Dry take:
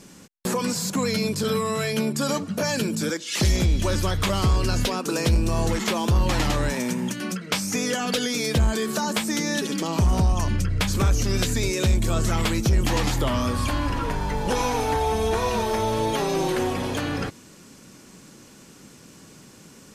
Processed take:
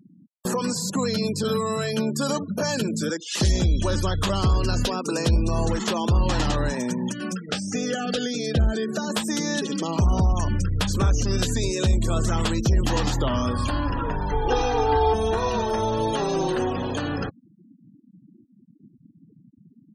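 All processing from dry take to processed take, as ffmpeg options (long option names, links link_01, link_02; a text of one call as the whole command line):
ffmpeg -i in.wav -filter_complex "[0:a]asettb=1/sr,asplit=3[link_01][link_02][link_03];[link_01]atrim=end=7.494[link_04];[link_02]atrim=start=7.49:end=9.1,asetpts=PTS-STARTPTS,afade=type=in:duration=0.004:curve=qsin,afade=type=out:start_time=1.606:duration=0.004:curve=qsin,highshelf=frequency=3400:gain=-5,acompressor=mode=upward:threshold=-30dB:ratio=2.5:attack=3.2:release=140:knee=2.83:detection=peak,asuperstop=centerf=1000:order=4:qfactor=2.8[link_05];[link_03]atrim=start=9.096[link_06];[link_04][link_05]acrossfade=duration=0.004:curve1=hsin:curve2=qsin[link_07];[link_07][link_06]acrossfade=duration=0.004:curve1=qsin:curve2=hsin,asettb=1/sr,asplit=3[link_08][link_09][link_10];[link_08]atrim=end=14.324[link_11];[link_09]atrim=start=14.32:end=15.14,asetpts=PTS-STARTPTS,afade=type=in:duration=0.004:curve=qsin,afade=type=out:start_time=0.816:duration=0.004:curve=qsin,aeval=exprs='sgn(val(0))*max(abs(val(0))-0.00631,0)':channel_layout=same,lowpass=4700,aecho=1:1:2.5:0.93,atrim=end_sample=36162[link_12];[link_10]atrim=start=15.136[link_13];[link_11][link_12]acrossfade=duration=0.004:curve1=hsin:curve2=qsin[link_14];[link_14][link_13]acrossfade=duration=0.004:curve1=qsin:curve2=hsin,afftfilt=real='re*gte(hypot(re,im),0.0224)':imag='im*gte(hypot(re,im),0.0224)':win_size=1024:overlap=0.75,equalizer=frequency=2200:width_type=o:width=0.2:gain=-12.5" out.wav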